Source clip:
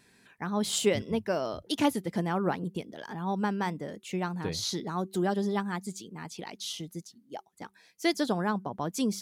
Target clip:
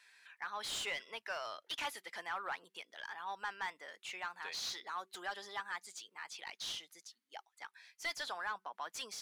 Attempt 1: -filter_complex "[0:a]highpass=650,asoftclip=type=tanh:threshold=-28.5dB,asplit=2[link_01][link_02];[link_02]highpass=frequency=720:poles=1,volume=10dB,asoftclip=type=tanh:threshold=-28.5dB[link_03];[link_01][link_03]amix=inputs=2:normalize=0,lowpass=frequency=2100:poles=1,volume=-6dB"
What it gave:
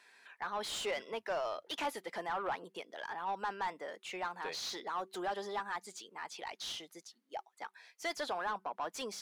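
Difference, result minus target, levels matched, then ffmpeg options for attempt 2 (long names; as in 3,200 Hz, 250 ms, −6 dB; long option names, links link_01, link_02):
500 Hz band +8.0 dB
-filter_complex "[0:a]highpass=1500,asoftclip=type=tanh:threshold=-28.5dB,asplit=2[link_01][link_02];[link_02]highpass=frequency=720:poles=1,volume=10dB,asoftclip=type=tanh:threshold=-28.5dB[link_03];[link_01][link_03]amix=inputs=2:normalize=0,lowpass=frequency=2100:poles=1,volume=-6dB"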